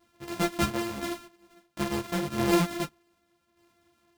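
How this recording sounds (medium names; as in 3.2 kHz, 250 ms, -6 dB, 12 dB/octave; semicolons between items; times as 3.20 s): a buzz of ramps at a fixed pitch in blocks of 128 samples; tremolo saw down 0.84 Hz, depth 60%; a shimmering, thickened sound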